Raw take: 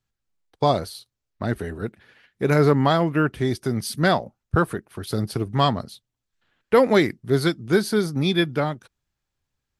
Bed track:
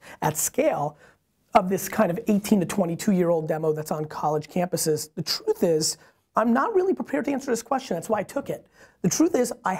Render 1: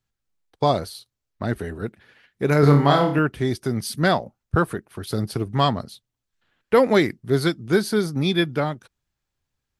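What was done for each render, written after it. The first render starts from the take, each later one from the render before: 2.6–3.19 flutter echo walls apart 4.8 m, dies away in 0.41 s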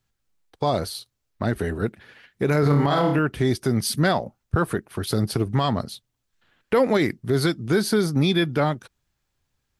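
in parallel at -2 dB: compressor, threshold -24 dBFS, peak gain reduction 13 dB; on the sum: limiter -11 dBFS, peak gain reduction 10 dB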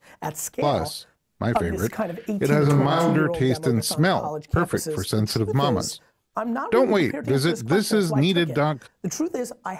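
add bed track -5.5 dB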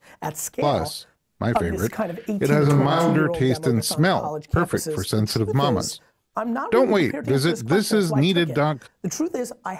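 gain +1 dB

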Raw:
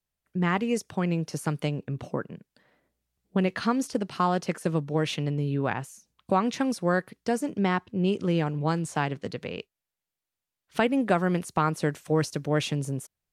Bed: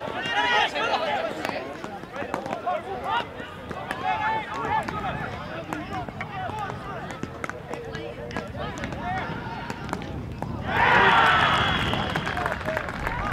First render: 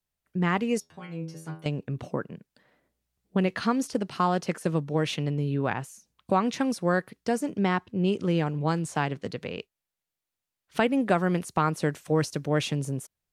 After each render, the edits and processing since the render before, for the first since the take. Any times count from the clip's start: 0.8–1.66 metallic resonator 80 Hz, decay 0.49 s, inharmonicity 0.002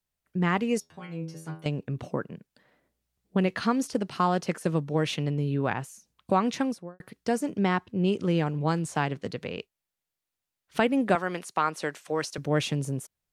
6.55–7 studio fade out; 11.15–12.38 weighting filter A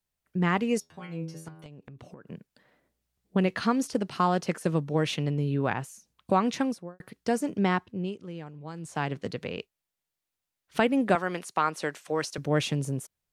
1.48–2.27 compressor 16:1, threshold -42 dBFS; 7.74–9.17 dip -14.5 dB, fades 0.44 s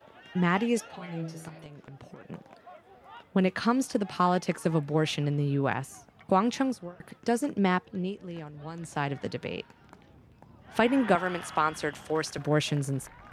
add bed -22.5 dB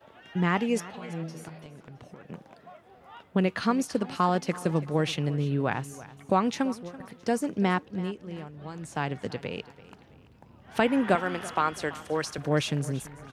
feedback echo 0.334 s, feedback 38%, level -18 dB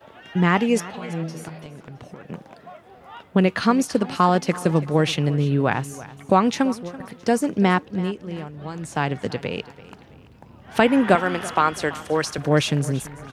gain +7 dB

